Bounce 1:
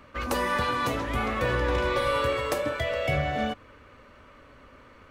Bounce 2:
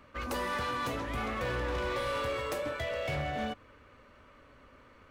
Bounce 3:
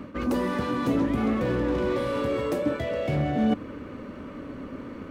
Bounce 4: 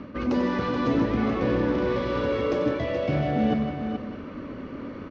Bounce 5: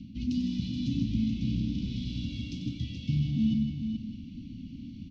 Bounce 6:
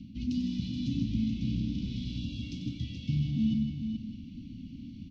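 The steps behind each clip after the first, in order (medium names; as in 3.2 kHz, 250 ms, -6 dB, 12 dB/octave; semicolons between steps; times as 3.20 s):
hard clipper -24 dBFS, distortion -13 dB; trim -5.5 dB
reverse; compression 10:1, threshold -42 dBFS, peak gain reduction 11 dB; reverse; small resonant body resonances 200/280 Hz, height 16 dB, ringing for 25 ms; trim +9 dB
steep low-pass 6 kHz 48 dB/octave; on a send: multi-tap echo 93/157/427/612 ms -9/-9/-8/-17.5 dB
inverse Chebyshev band-stop 400–1800 Hz, stop band 40 dB
spectral selection erased 2.19–2.42 s, 1–2.3 kHz; trim -1.5 dB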